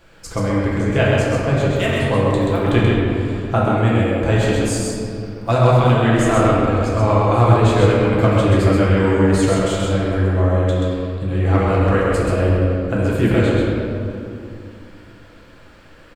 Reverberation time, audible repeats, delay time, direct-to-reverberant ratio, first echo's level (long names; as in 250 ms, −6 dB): 2.7 s, 1, 131 ms, −7.0 dB, −3.5 dB